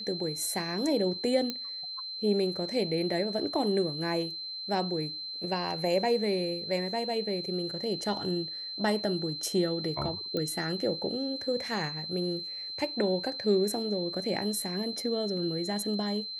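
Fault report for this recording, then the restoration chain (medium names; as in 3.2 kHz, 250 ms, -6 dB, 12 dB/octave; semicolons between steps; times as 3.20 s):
whine 4.1 kHz -36 dBFS
1.50 s: pop -17 dBFS
10.37 s: pop -20 dBFS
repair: de-click; band-stop 4.1 kHz, Q 30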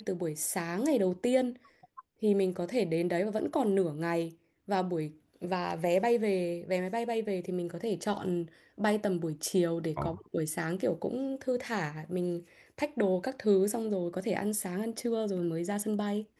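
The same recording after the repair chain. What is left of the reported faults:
nothing left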